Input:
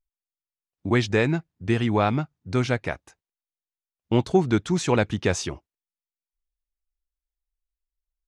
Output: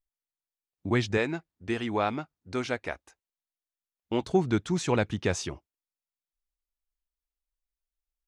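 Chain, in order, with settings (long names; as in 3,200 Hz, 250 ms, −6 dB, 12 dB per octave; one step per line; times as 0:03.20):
0:01.17–0:04.22: parametric band 130 Hz −12 dB 1.1 octaves
level −4.5 dB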